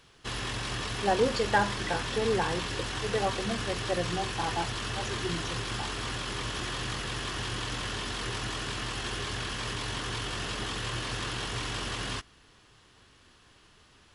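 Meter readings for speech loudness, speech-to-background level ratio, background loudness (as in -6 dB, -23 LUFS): -32.0 LUFS, 1.5 dB, -33.5 LUFS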